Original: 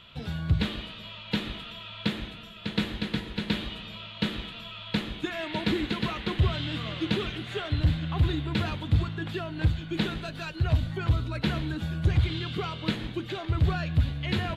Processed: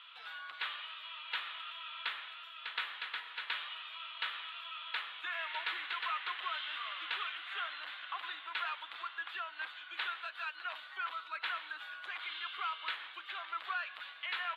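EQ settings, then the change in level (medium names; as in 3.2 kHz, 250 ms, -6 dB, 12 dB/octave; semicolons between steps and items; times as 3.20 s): dynamic bell 5.8 kHz, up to -8 dB, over -53 dBFS, Q 1.2; ladder high-pass 1 kHz, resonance 45%; resonant high shelf 4.5 kHz -8.5 dB, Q 1.5; +3.5 dB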